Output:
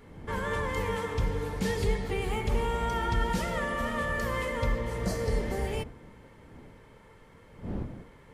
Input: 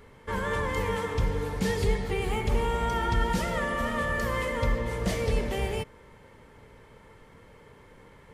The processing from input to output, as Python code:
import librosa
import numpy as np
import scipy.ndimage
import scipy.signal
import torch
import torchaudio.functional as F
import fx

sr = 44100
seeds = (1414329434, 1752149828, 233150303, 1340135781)

y = fx.dmg_wind(x, sr, seeds[0], corner_hz=250.0, level_db=-44.0)
y = fx.spec_repair(y, sr, seeds[1], start_s=4.83, length_s=0.82, low_hz=1600.0, high_hz=3900.0, source='before')
y = y * librosa.db_to_amplitude(-2.0)